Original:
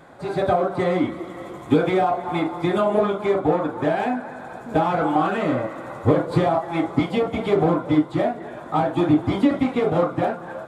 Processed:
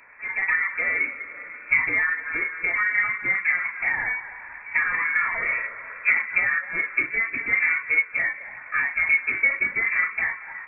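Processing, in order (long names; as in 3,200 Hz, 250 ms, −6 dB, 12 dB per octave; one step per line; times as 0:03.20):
voice inversion scrambler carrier 2,500 Hz
level −3.5 dB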